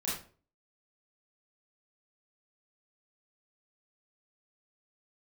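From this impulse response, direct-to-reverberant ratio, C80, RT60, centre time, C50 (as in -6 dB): -8.0 dB, 8.0 dB, 0.40 s, 48 ms, 2.0 dB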